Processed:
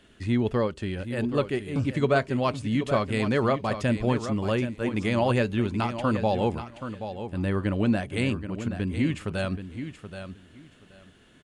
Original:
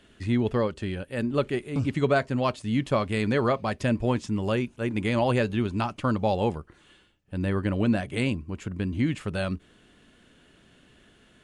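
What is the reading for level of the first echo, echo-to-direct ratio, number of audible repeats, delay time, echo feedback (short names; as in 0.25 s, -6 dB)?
-10.0 dB, -10.0 dB, 2, 0.777 s, 18%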